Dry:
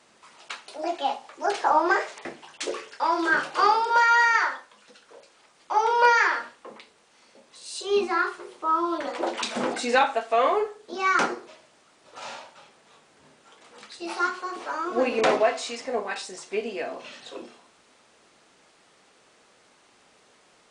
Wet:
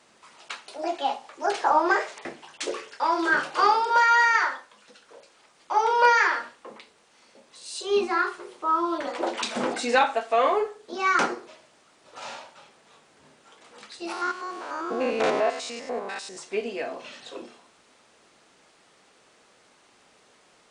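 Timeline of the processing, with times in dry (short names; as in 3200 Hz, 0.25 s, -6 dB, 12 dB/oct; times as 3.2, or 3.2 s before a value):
14.12–16.37 stepped spectrum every 0.1 s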